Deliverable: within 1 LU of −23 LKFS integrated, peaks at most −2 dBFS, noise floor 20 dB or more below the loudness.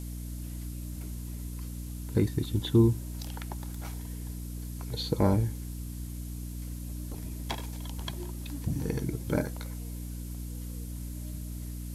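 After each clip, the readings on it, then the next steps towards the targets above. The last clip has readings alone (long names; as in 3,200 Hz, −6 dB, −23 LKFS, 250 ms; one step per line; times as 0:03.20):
mains hum 60 Hz; hum harmonics up to 300 Hz; level of the hum −36 dBFS; background noise floor −39 dBFS; target noise floor −54 dBFS; integrated loudness −33.5 LKFS; sample peak −10.5 dBFS; target loudness −23.0 LKFS
→ hum removal 60 Hz, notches 5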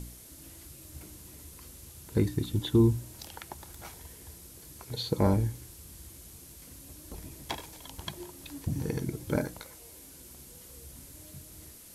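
mains hum none found; background noise floor −51 dBFS; target noise floor −52 dBFS
→ noise reduction from a noise print 6 dB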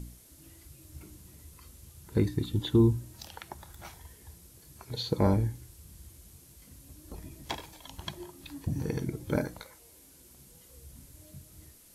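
background noise floor −56 dBFS; integrated loudness −31.0 LKFS; sample peak −11.0 dBFS; target loudness −23.0 LKFS
→ level +8 dB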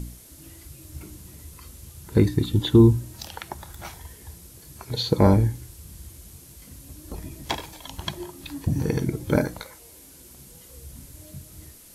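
integrated loudness −23.0 LKFS; sample peak −3.0 dBFS; background noise floor −48 dBFS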